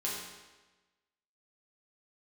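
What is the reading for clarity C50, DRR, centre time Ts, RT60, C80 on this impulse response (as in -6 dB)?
1.0 dB, -6.0 dB, 70 ms, 1.2 s, 3.5 dB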